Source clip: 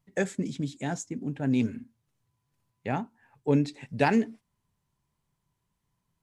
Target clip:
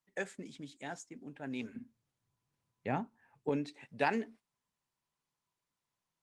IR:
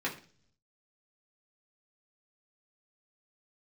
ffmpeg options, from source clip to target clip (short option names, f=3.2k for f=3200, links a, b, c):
-af "asetnsamples=n=441:p=0,asendcmd='1.75 highpass f 110;3.49 highpass f 580',highpass=f=870:p=1,highshelf=f=6k:g=-7,volume=-4dB" -ar 48000 -c:a libopus -b:a 32k